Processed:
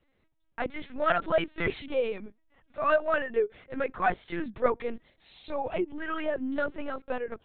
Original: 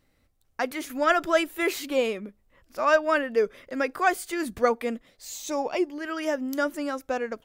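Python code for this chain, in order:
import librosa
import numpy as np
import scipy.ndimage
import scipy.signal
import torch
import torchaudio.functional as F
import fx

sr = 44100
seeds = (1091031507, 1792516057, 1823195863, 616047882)

y = fx.lpc_vocoder(x, sr, seeds[0], excitation='pitch_kept', order=10)
y = fx.band_squash(y, sr, depth_pct=70, at=(5.74, 6.81))
y = y * librosa.db_to_amplitude(-3.5)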